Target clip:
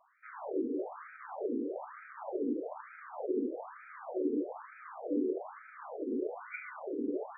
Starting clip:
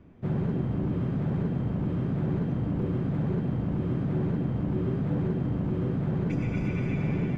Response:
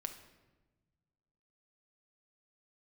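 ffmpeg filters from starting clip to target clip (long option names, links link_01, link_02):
-filter_complex "[0:a]asubboost=boost=5.5:cutoff=130,asplit=2[link_01][link_02];[1:a]atrim=start_sample=2205,asetrate=41013,aresample=44100,lowpass=1500[link_03];[link_02][link_03]afir=irnorm=-1:irlink=0,volume=-6dB[link_04];[link_01][link_04]amix=inputs=2:normalize=0,afftfilt=real='re*between(b*sr/1024,340*pow(1800/340,0.5+0.5*sin(2*PI*1.1*pts/sr))/1.41,340*pow(1800/340,0.5+0.5*sin(2*PI*1.1*pts/sr))*1.41)':imag='im*between(b*sr/1024,340*pow(1800/340,0.5+0.5*sin(2*PI*1.1*pts/sr))/1.41,340*pow(1800/340,0.5+0.5*sin(2*PI*1.1*pts/sr))*1.41)':win_size=1024:overlap=0.75,volume=3.5dB"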